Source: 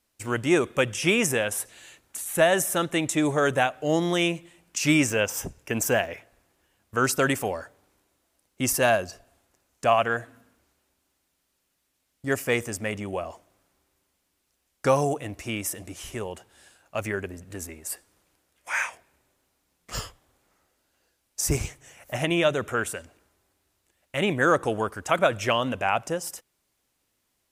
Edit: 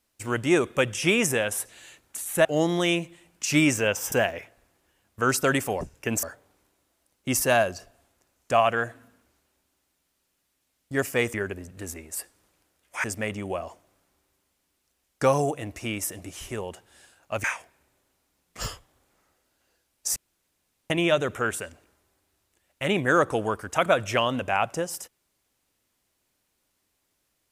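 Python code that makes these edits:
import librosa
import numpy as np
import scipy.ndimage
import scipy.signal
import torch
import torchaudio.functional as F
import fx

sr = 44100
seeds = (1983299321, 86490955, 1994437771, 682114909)

y = fx.edit(x, sr, fx.cut(start_s=2.45, length_s=1.33),
    fx.move(start_s=5.45, length_s=0.42, to_s=7.56),
    fx.move(start_s=17.07, length_s=1.7, to_s=12.67),
    fx.room_tone_fill(start_s=21.49, length_s=0.74), tone=tone)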